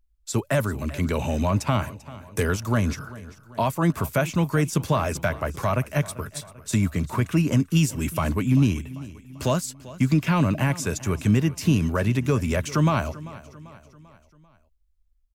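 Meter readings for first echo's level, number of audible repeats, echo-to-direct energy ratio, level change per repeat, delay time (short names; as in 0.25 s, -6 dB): -18.0 dB, 3, -17.0 dB, -6.0 dB, 0.392 s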